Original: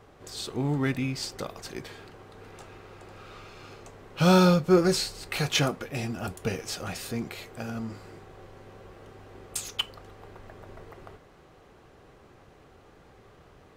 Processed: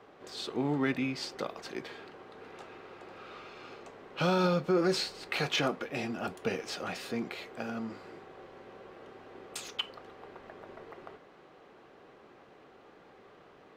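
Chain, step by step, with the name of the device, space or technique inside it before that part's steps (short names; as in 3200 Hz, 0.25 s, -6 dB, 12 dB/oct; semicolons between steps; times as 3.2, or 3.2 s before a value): DJ mixer with the lows and highs turned down (three-band isolator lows -19 dB, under 180 Hz, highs -13 dB, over 4800 Hz; limiter -19 dBFS, peak gain reduction 8.5 dB)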